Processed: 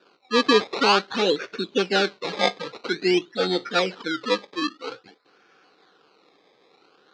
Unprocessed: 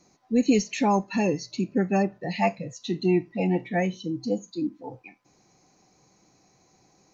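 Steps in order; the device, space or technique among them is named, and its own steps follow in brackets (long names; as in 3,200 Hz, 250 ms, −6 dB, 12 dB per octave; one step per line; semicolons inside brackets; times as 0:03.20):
circuit-bent sampling toy (sample-and-hold swept by an LFO 21×, swing 100% 0.5 Hz; loudspeaker in its box 440–5,100 Hz, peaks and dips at 450 Hz +6 dB, 650 Hz −8 dB, 930 Hz −5 dB, 1,400 Hz +7 dB, 1,900 Hz −4 dB, 4,100 Hz +8 dB)
0:01.42–0:02.32: notch filter 1,300 Hz, Q 6.3
level +6.5 dB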